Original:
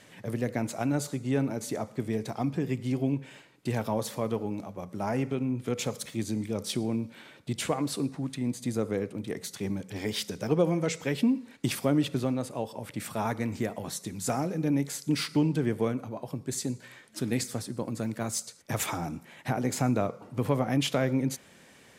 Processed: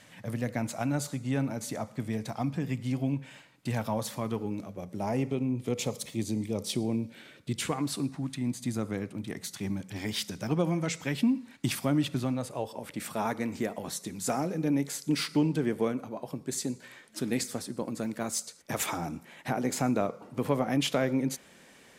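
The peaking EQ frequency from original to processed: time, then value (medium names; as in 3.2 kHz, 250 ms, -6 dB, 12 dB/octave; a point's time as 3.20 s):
peaking EQ -9.5 dB 0.53 oct
4.05 s 390 Hz
5.13 s 1.5 kHz
6.85 s 1.5 kHz
7.96 s 460 Hz
12.29 s 460 Hz
12.85 s 110 Hz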